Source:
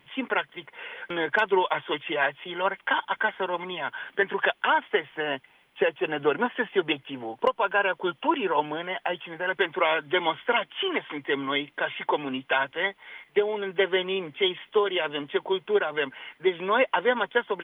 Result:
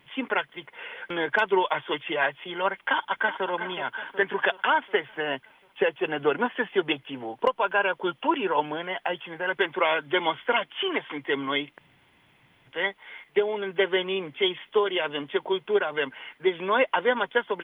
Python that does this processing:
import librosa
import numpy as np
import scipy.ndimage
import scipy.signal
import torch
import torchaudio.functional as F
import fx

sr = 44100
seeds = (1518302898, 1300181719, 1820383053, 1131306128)

y = fx.echo_throw(x, sr, start_s=2.86, length_s=0.61, ms=370, feedback_pct=60, wet_db=-11.0)
y = fx.edit(y, sr, fx.room_tone_fill(start_s=11.78, length_s=0.89), tone=tone)